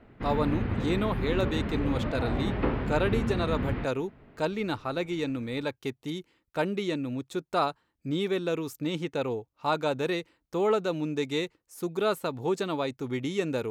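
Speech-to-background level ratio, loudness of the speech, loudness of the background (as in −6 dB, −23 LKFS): 0.5 dB, −31.0 LKFS, −31.5 LKFS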